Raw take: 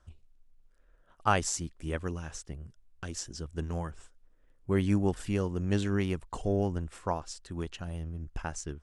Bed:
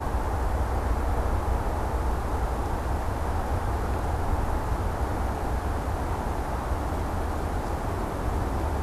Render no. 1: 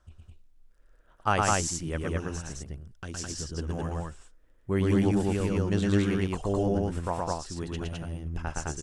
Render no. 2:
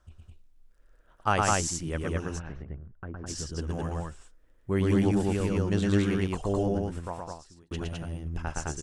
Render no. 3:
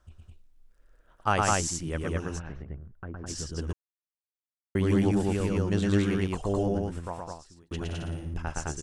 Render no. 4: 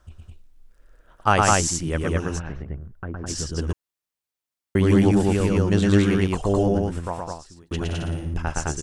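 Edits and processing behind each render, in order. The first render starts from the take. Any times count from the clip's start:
loudspeakers at several distances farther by 39 m -2 dB, 72 m -1 dB
2.38–3.26 LPF 3000 Hz -> 1300 Hz 24 dB/oct; 6.56–7.71 fade out
3.73–4.75 mute; 7.83–8.34 flutter echo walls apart 9.8 m, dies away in 0.63 s
gain +7 dB

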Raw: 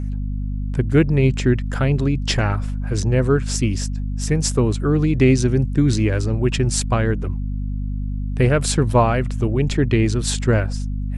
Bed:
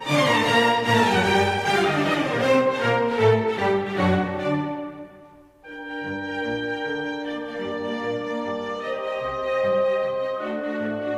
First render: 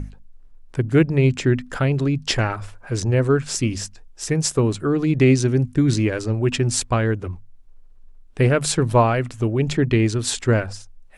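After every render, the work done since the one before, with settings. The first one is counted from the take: notches 50/100/150/200/250 Hz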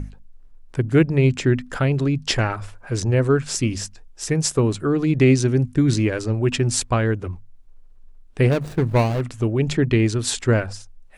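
8.51–9.21 median filter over 41 samples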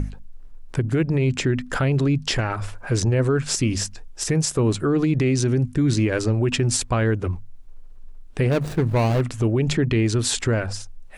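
in parallel at +0.5 dB: compressor, threshold -28 dBFS, peak gain reduction 16.5 dB; on the sum: limiter -12.5 dBFS, peak gain reduction 9 dB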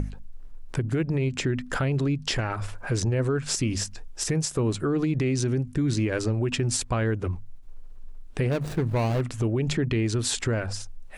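compressor 1.5:1, threshold -30 dBFS, peak gain reduction 5.5 dB; ending taper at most 250 dB/s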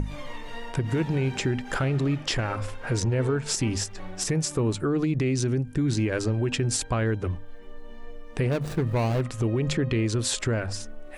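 add bed -21.5 dB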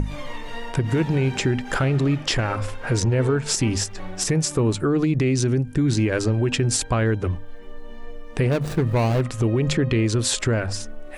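gain +4.5 dB

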